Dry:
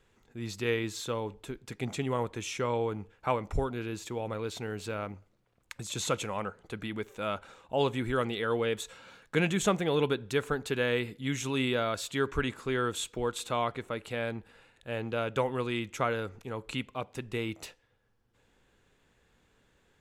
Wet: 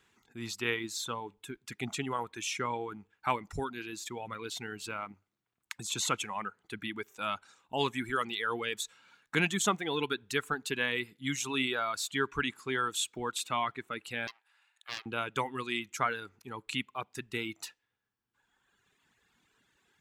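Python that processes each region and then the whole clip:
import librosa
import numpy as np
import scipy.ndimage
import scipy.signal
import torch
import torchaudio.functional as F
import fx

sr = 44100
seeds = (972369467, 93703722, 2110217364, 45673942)

y = fx.chain(x, sr, fx.highpass(hz=740.0, slope=24),
    fx.doppler_dist(depth_ms=0.7), at=(14.27, 15.06))
y = fx.highpass(y, sr, hz=300.0, slope=6)
y = fx.dereverb_blind(y, sr, rt60_s=1.9)
y = fx.peak_eq(y, sr, hz=540.0, db=-12.5, octaves=0.68)
y = y * librosa.db_to_amplitude(3.5)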